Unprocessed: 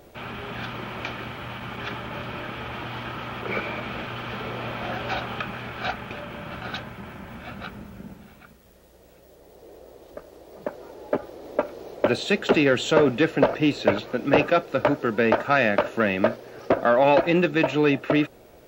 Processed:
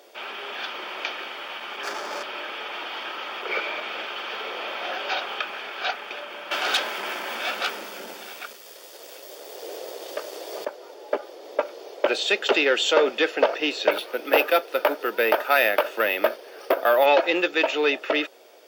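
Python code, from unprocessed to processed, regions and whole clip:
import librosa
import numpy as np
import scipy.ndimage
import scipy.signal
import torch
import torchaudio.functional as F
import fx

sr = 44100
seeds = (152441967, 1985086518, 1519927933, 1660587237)

y = fx.chain(x, sr, fx.median_filter(points=15),
    fx.leveller(passes=2), at=(1.83, 2.23))
y = fx.chain(y, sr, fx.high_shelf(hz=3800.0, db=4.5),
    fx.leveller(passes=3),
    fx.highpass(hz=140.0, slope=12), at=(6.51, 10.65))
y = fx.chain(y, sr, fx.highpass(hz=120.0, slope=12),
    fx.resample_bad(factor=3, down='filtered', up='hold'), at=(13.91, 17.06))
y = scipy.signal.sosfilt(scipy.signal.butter(4, 380.0, 'highpass', fs=sr, output='sos'), y)
y = fx.peak_eq(y, sr, hz=4100.0, db=10.0, octaves=1.1)
y = fx.notch(y, sr, hz=4000.0, q=6.7)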